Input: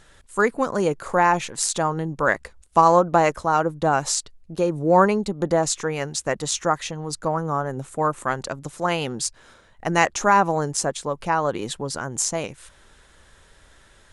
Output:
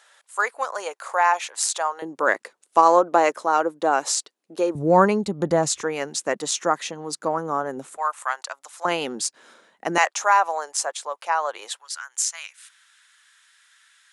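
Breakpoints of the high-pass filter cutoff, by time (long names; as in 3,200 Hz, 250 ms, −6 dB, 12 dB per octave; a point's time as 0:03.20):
high-pass filter 24 dB per octave
630 Hz
from 0:02.02 290 Hz
from 0:04.75 72 Hz
from 0:05.83 210 Hz
from 0:07.97 780 Hz
from 0:08.85 220 Hz
from 0:09.98 630 Hz
from 0:11.79 1,400 Hz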